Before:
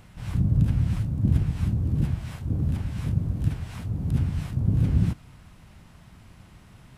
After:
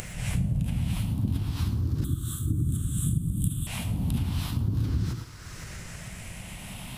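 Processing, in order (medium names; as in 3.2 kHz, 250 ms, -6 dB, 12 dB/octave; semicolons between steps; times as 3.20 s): drifting ripple filter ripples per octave 0.52, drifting +0.33 Hz, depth 8 dB; upward compressor, threshold -34 dBFS; treble shelf 2.3 kHz +11 dB; gated-style reverb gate 130 ms rising, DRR 10 dB; compression 6:1, threshold -25 dBFS, peak gain reduction 10.5 dB; 2.04–3.67 s: FFT filter 100 Hz 0 dB, 320 Hz +5 dB, 470 Hz -18 dB, 830 Hz -26 dB, 1.2 kHz -2 dB, 2.2 kHz -29 dB, 3.5 kHz +5 dB, 5 kHz -24 dB, 8.2 kHz +10 dB; trim +1.5 dB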